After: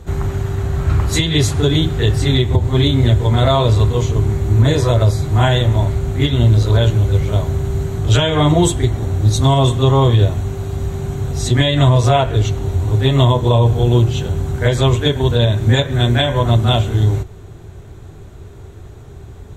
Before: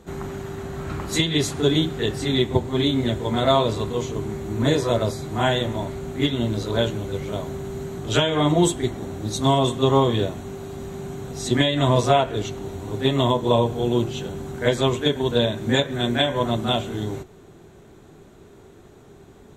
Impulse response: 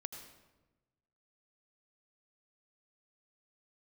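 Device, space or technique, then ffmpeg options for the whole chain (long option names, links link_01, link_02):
car stereo with a boomy subwoofer: -af "lowshelf=frequency=140:width_type=q:width=1.5:gain=11.5,alimiter=limit=-9.5dB:level=0:latency=1:release=79,volume=6dB"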